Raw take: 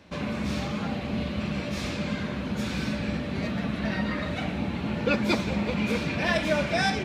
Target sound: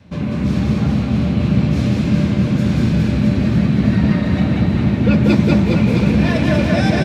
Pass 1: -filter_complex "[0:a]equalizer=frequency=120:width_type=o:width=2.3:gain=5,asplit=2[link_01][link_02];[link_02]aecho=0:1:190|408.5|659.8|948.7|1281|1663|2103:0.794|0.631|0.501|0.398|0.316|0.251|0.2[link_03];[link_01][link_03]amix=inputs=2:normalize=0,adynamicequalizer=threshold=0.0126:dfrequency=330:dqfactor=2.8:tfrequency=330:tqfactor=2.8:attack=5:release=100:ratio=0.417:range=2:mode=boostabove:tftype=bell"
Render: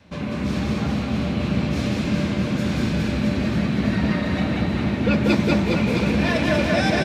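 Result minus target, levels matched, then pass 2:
125 Hz band −2.5 dB
-filter_complex "[0:a]equalizer=frequency=120:width_type=o:width=2.3:gain=15,asplit=2[link_01][link_02];[link_02]aecho=0:1:190|408.5|659.8|948.7|1281|1663|2103:0.794|0.631|0.501|0.398|0.316|0.251|0.2[link_03];[link_01][link_03]amix=inputs=2:normalize=0,adynamicequalizer=threshold=0.0126:dfrequency=330:dqfactor=2.8:tfrequency=330:tqfactor=2.8:attack=5:release=100:ratio=0.417:range=2:mode=boostabove:tftype=bell"

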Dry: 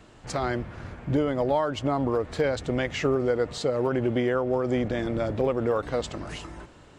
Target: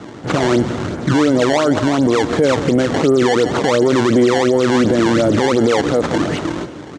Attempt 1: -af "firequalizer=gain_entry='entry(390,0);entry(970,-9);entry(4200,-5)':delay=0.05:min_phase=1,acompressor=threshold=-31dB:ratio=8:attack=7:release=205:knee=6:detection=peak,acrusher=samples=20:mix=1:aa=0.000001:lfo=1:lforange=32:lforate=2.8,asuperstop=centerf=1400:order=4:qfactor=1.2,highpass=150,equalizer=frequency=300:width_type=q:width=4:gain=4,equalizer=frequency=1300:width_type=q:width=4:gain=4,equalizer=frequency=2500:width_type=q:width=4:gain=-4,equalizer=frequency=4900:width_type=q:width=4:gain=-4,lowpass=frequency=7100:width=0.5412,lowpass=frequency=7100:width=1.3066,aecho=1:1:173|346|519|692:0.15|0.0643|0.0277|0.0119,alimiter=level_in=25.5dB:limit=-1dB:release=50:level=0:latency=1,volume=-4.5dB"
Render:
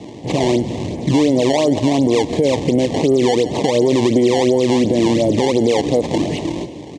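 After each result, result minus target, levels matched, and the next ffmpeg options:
downward compressor: peak gain reduction +7 dB; 1,000 Hz band −2.5 dB
-af "firequalizer=gain_entry='entry(390,0);entry(970,-9);entry(4200,-5)':delay=0.05:min_phase=1,acompressor=threshold=-23dB:ratio=8:attack=7:release=205:knee=6:detection=peak,acrusher=samples=20:mix=1:aa=0.000001:lfo=1:lforange=32:lforate=2.8,asuperstop=centerf=1400:order=4:qfactor=1.2,highpass=150,equalizer=frequency=300:width_type=q:width=4:gain=4,equalizer=frequency=1300:width_type=q:width=4:gain=4,equalizer=frequency=2500:width_type=q:width=4:gain=-4,equalizer=frequency=4900:width_type=q:width=4:gain=-4,lowpass=frequency=7100:width=0.5412,lowpass=frequency=7100:width=1.3066,aecho=1:1:173|346|519|692:0.15|0.0643|0.0277|0.0119,alimiter=level_in=25.5dB:limit=-1dB:release=50:level=0:latency=1,volume=-4.5dB"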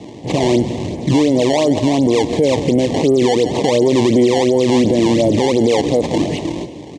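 1,000 Hz band −2.5 dB
-af "firequalizer=gain_entry='entry(390,0);entry(970,-9);entry(4200,-5)':delay=0.05:min_phase=1,acompressor=threshold=-23dB:ratio=8:attack=7:release=205:knee=6:detection=peak,acrusher=samples=20:mix=1:aa=0.000001:lfo=1:lforange=32:lforate=2.8,highpass=150,equalizer=frequency=300:width_type=q:width=4:gain=4,equalizer=frequency=1300:width_type=q:width=4:gain=4,equalizer=frequency=2500:width_type=q:width=4:gain=-4,equalizer=frequency=4900:width_type=q:width=4:gain=-4,lowpass=frequency=7100:width=0.5412,lowpass=frequency=7100:width=1.3066,aecho=1:1:173|346|519|692:0.15|0.0643|0.0277|0.0119,alimiter=level_in=25.5dB:limit=-1dB:release=50:level=0:latency=1,volume=-4.5dB"

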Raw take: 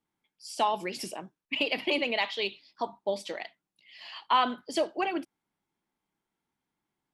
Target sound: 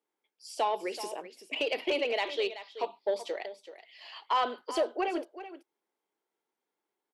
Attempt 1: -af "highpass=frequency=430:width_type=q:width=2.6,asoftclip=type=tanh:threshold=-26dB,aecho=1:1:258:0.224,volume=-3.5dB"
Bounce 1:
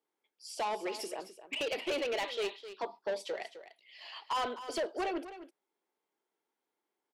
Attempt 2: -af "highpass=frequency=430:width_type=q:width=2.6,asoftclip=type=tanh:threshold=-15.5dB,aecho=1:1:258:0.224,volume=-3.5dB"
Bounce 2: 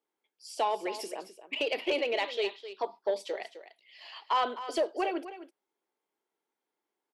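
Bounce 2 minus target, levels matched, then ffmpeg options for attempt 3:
echo 122 ms early
-af "highpass=frequency=430:width_type=q:width=2.6,asoftclip=type=tanh:threshold=-15.5dB,aecho=1:1:380:0.224,volume=-3.5dB"

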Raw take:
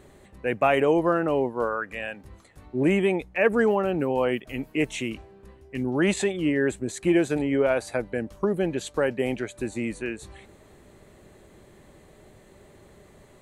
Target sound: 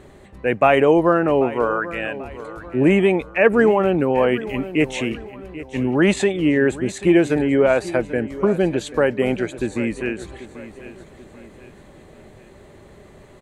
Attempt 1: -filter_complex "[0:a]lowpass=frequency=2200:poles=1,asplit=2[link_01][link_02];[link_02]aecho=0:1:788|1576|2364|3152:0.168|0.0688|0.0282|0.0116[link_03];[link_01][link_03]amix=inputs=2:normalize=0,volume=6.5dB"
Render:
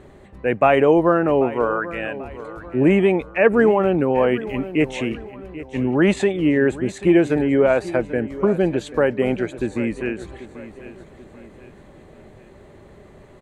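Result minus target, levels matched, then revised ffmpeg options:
4,000 Hz band −3.0 dB
-filter_complex "[0:a]lowpass=frequency=4900:poles=1,asplit=2[link_01][link_02];[link_02]aecho=0:1:788|1576|2364|3152:0.168|0.0688|0.0282|0.0116[link_03];[link_01][link_03]amix=inputs=2:normalize=0,volume=6.5dB"

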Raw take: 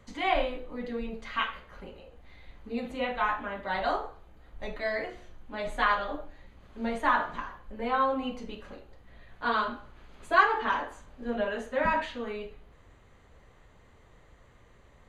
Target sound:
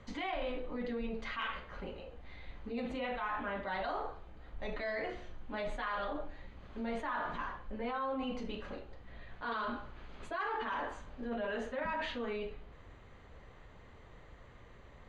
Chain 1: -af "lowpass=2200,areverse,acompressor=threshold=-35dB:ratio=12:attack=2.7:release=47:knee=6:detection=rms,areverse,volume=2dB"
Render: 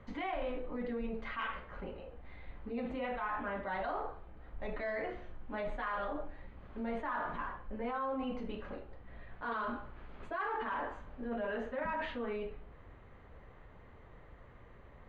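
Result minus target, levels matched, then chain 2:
4,000 Hz band −6.0 dB
-af "lowpass=5000,areverse,acompressor=threshold=-35dB:ratio=12:attack=2.7:release=47:knee=6:detection=rms,areverse,volume=2dB"

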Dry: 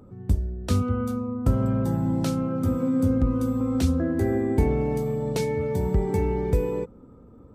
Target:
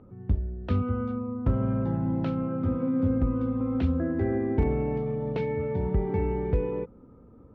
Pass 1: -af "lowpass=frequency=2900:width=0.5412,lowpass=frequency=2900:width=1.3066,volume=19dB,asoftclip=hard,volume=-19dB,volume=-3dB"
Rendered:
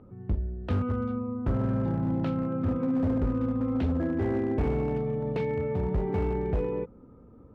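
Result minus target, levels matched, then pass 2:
gain into a clipping stage and back: distortion +19 dB
-af "lowpass=frequency=2900:width=0.5412,lowpass=frequency=2900:width=1.3066,volume=12dB,asoftclip=hard,volume=-12dB,volume=-3dB"

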